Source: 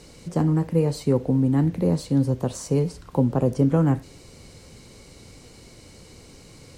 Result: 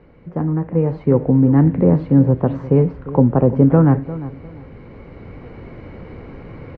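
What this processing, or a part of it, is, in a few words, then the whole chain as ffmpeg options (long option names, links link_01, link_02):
action camera in a waterproof case: -filter_complex "[0:a]lowpass=frequency=2000:width=0.5412,lowpass=frequency=2000:width=1.3066,asplit=2[link_01][link_02];[link_02]adelay=350,lowpass=frequency=2000:poles=1,volume=-15dB,asplit=2[link_03][link_04];[link_04]adelay=350,lowpass=frequency=2000:poles=1,volume=0.26,asplit=2[link_05][link_06];[link_06]adelay=350,lowpass=frequency=2000:poles=1,volume=0.26[link_07];[link_01][link_03][link_05][link_07]amix=inputs=4:normalize=0,dynaudnorm=framelen=390:gausssize=5:maxgain=13dB" -ar 32000 -c:a aac -b:a 64k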